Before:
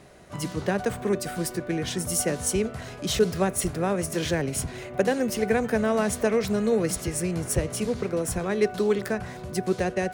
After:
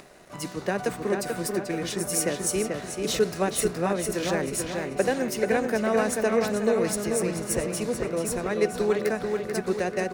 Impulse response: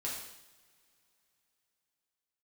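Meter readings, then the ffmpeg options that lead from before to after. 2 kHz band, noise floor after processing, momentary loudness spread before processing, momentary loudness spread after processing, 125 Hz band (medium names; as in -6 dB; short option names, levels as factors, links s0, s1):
+1.0 dB, -39 dBFS, 7 LU, 5 LU, -4.5 dB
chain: -filter_complex "[0:a]equalizer=f=82:t=o:w=1.6:g=-13.5,bandreject=f=3200:w=11,acompressor=mode=upward:threshold=0.00891:ratio=2.5,aeval=exprs='sgn(val(0))*max(abs(val(0))-0.00188,0)':c=same,asplit=2[s0][s1];[s1]adelay=437,lowpass=f=4000:p=1,volume=0.631,asplit=2[s2][s3];[s3]adelay=437,lowpass=f=4000:p=1,volume=0.49,asplit=2[s4][s5];[s5]adelay=437,lowpass=f=4000:p=1,volume=0.49,asplit=2[s6][s7];[s7]adelay=437,lowpass=f=4000:p=1,volume=0.49,asplit=2[s8][s9];[s9]adelay=437,lowpass=f=4000:p=1,volume=0.49,asplit=2[s10][s11];[s11]adelay=437,lowpass=f=4000:p=1,volume=0.49[s12];[s2][s4][s6][s8][s10][s12]amix=inputs=6:normalize=0[s13];[s0][s13]amix=inputs=2:normalize=0"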